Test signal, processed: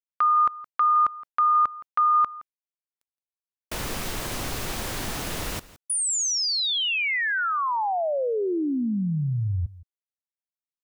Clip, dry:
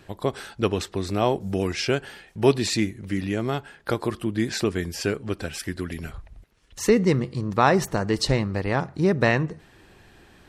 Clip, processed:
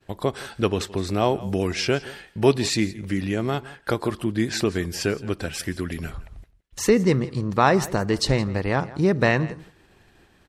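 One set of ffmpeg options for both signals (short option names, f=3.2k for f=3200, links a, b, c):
-filter_complex "[0:a]agate=range=-33dB:threshold=-44dB:ratio=3:detection=peak,asplit=2[a][b];[b]acompressor=threshold=-36dB:ratio=6,volume=-3dB[c];[a][c]amix=inputs=2:normalize=0,aecho=1:1:168:0.112"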